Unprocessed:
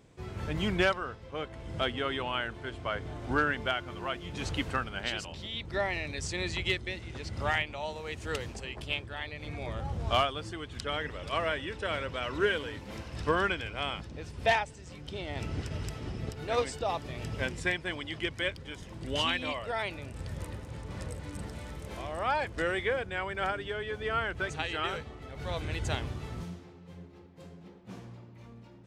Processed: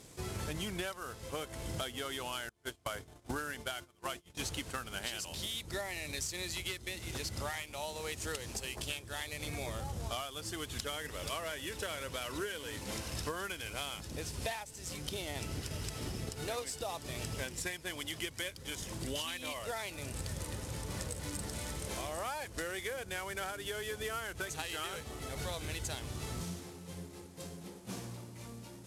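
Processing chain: CVSD 64 kbps; 2.49–4.8 gate -36 dBFS, range -30 dB; tone controls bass -2 dB, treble +12 dB; compressor 12:1, threshold -39 dBFS, peak gain reduction 19 dB; gain +3.5 dB

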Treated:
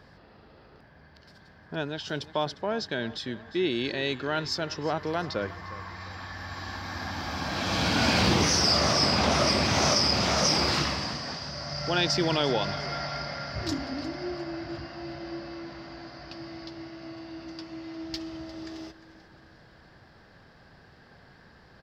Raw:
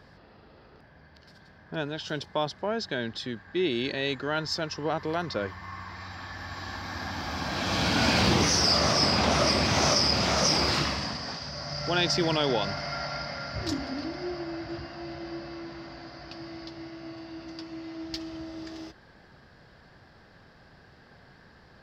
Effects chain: feedback echo 0.353 s, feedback 45%, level -17.5 dB

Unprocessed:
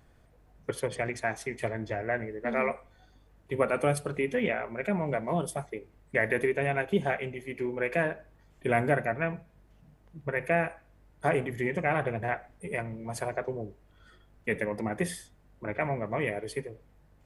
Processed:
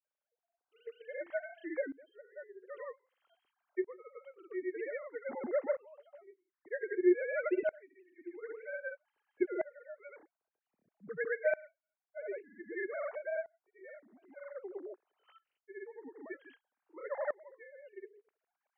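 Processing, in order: sine-wave speech; grains 0.1 s, grains 20/s, pitch spread up and down by 0 st; speed mistake 48 kHz file played as 44.1 kHz; dB-ramp tremolo swelling 0.52 Hz, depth 23 dB; gain +1 dB

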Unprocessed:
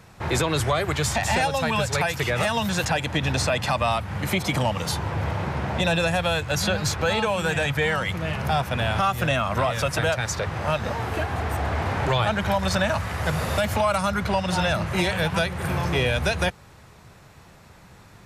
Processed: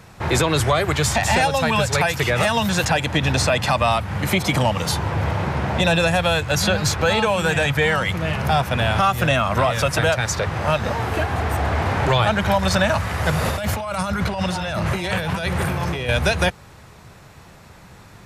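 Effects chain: 13.44–16.09 negative-ratio compressor -28 dBFS, ratio -1; gain +4.5 dB

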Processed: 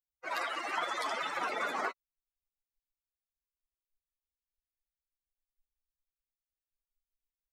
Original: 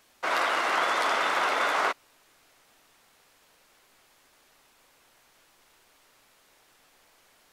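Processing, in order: per-bin expansion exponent 3; 1.4–1.87 band noise 210–700 Hz -45 dBFS; gain -1.5 dB

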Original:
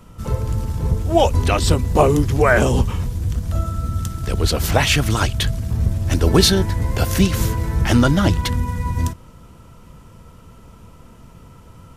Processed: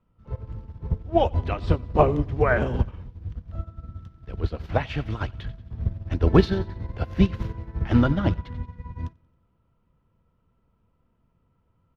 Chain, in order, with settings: air absorption 310 m; feedback echo 91 ms, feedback 58%, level -17 dB; upward expander 2.5:1, over -26 dBFS

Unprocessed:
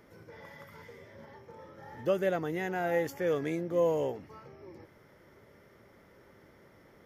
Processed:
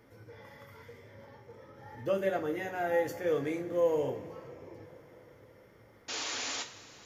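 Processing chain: painted sound noise, 6.08–6.63, 240–7300 Hz -35 dBFS; two-slope reverb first 0.27 s, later 4.9 s, from -22 dB, DRR 2 dB; gain -3.5 dB

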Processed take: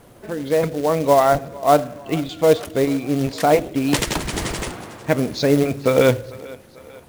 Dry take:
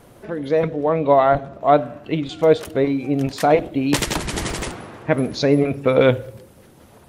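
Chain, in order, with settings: thinning echo 0.445 s, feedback 56%, high-pass 280 Hz, level -20 dB; short-mantissa float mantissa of 2-bit

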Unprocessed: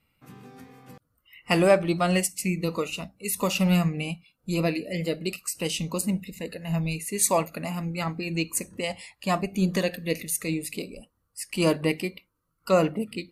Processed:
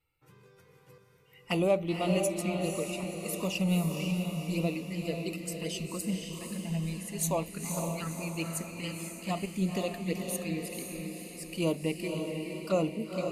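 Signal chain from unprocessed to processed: envelope flanger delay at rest 2.3 ms, full sweep at -21 dBFS; diffused feedback echo 0.507 s, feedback 51%, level -4 dB; gain -6 dB

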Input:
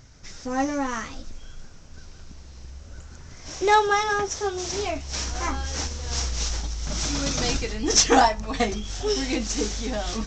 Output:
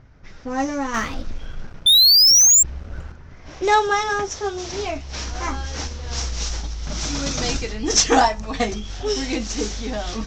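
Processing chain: low-pass opened by the level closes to 1900 Hz, open at -19 dBFS; 1.86–2.63 painted sound rise 3500–7500 Hz -15 dBFS; 0.94–3.12 sample leveller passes 2; gain +1.5 dB

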